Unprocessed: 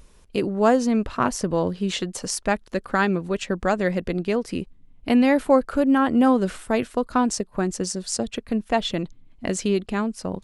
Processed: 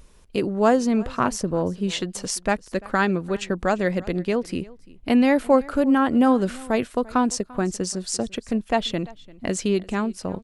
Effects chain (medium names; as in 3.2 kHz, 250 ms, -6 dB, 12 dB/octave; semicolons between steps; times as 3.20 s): 1.41–1.83 s: peaking EQ 3.2 kHz -14.5 dB -> -4.5 dB 2.5 oct; delay 343 ms -22 dB